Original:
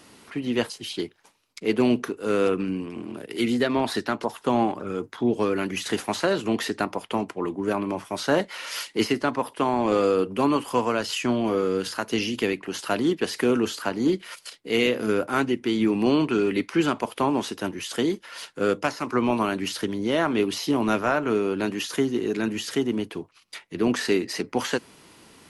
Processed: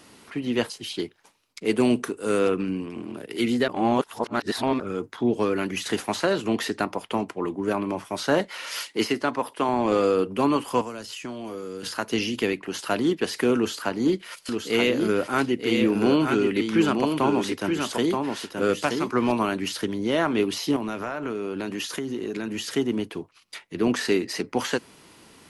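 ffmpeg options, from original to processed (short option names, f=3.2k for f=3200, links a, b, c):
-filter_complex "[0:a]asettb=1/sr,asplit=3[a][b][c];[a]atrim=end=1.654[d];[b]atrim=start=1.65:end=2.39,asetpts=PTS-STARTPTS,afade=t=in:d=0.004:c=qsin,afade=t=out:st=0.736:d=0.004:c=qsin,equalizer=f=8.7k:w=2.4:g=13.5[e];[c]atrim=start=2.386[f];[d][e]acrossfade=d=0.004:c1=hsin:c2=qsin[g];[g][f]acrossfade=d=0.004:c1=qsin:c2=hsin,asettb=1/sr,asplit=3[h][i][j];[h]atrim=end=8.834[k];[i]atrim=start=8.83:end=9.69,asetpts=PTS-STARTPTS,afade=t=in:d=0.004:c=qsin,afade=t=out:st=0.856:d=0.004:c=qsin,lowshelf=f=150:g=-7.5[l];[j]atrim=start=9.686[m];[k][l]acrossfade=d=0.004:c1=hsin:c2=qsin[n];[n][m]acrossfade=d=0.004:c1=qsin:c2=hsin,asettb=1/sr,asplit=3[o][p][q];[o]atrim=end=10.814[r];[p]atrim=start=10.81:end=11.83,asetpts=PTS-STARTPTS,afade=t=in:d=0.004:c=qsin,afade=t=out:st=1.016:d=0.004:c=qsin,acrossover=split=360|5500[s][t][u];[s]acompressor=threshold=-39dB:ratio=4[v];[t]acompressor=threshold=-38dB:ratio=4[w];[u]acompressor=threshold=-44dB:ratio=4[x];[v][w][x]amix=inputs=3:normalize=0[y];[q]atrim=start=11.826[z];[r][y]acrossfade=d=0.004:c1=hsin:c2=qsin[aa];[aa][z]acrossfade=d=0.004:c1=qsin:c2=hsin,asettb=1/sr,asplit=3[ab][ac][ad];[ab]atrim=end=13.564[ae];[ac]atrim=start=13.56:end=19.32,asetpts=PTS-STARTPTS,afade=t=in:d=0.004:c=qsin,afade=t=out:st=5.756:d=0.004:c=qsin,aecho=1:1:927:0.596,atrim=end_sample=254016[af];[ad]atrim=start=19.316[ag];[ae][af]acrossfade=d=0.004:c1=hsin:c2=qsin[ah];[ah][ag]acrossfade=d=0.004:c1=qsin:c2=hsin,asettb=1/sr,asplit=3[ai][aj][ak];[ai]atrim=end=20.764[al];[aj]atrim=start=20.76:end=22.66,asetpts=PTS-STARTPTS,afade=t=in:d=0.004:c=qsin,afade=t=out:st=1.896:d=0.004:c=qsin,acompressor=threshold=-25dB:ratio=10:attack=3.2:release=140:knee=1:detection=peak[am];[ak]atrim=start=22.656[an];[al][am]acrossfade=d=0.004:c1=hsin:c2=qsin[ao];[ao][an]acrossfade=d=0.004:c1=qsin:c2=hsin,asplit=3[ap][aq][ar];[ap]atrim=end=3.682[as];[aq]atrim=start=3.678:end=4.802,asetpts=PTS-STARTPTS,areverse[at];[ar]atrim=start=4.798[au];[as][at]acrossfade=d=0.004:c1=hsin:c2=hsin[av];[av][au]acrossfade=d=0.004:c1=hsin:c2=hsin"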